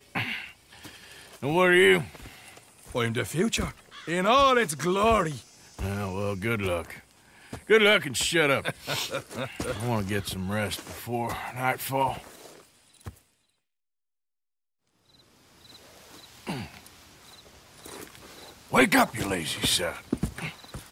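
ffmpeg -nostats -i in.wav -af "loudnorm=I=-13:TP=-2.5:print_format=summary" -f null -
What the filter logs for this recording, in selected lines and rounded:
Input Integrated:    -25.6 LUFS
Input True Peak:      -8.4 dBTP
Input LRA:            13.2 LU
Input Threshold:     -37.5 LUFS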